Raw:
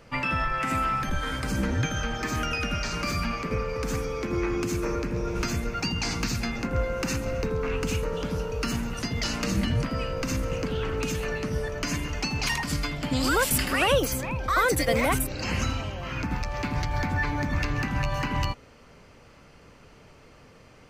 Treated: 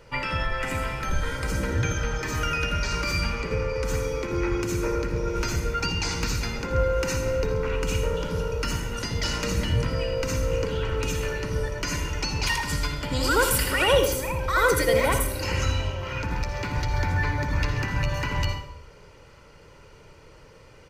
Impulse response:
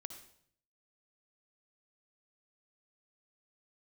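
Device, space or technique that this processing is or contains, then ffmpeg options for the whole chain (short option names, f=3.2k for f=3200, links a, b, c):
microphone above a desk: -filter_complex "[0:a]aecho=1:1:2.1:0.53[a];[1:a]atrim=start_sample=2205[b];[a][b]afir=irnorm=-1:irlink=0,asettb=1/sr,asplit=3[c][d][e];[c]atrim=end=3.174[f];[d]atrim=start=3.17:end=3.85,asetpts=PTS-STARTPTS,afade=t=in:d=0.004:c=qsin,afade=t=out:st=0.676:d=0.004:c=qsin,lowpass=12k[g];[e]atrim=start=3.846[h];[f][g]acrossfade=d=0.004:c1=hsin:c2=qsin[i];[i][h]acrossfade=d=0.004:c1=qsin:c2=hsin,volume=4.5dB"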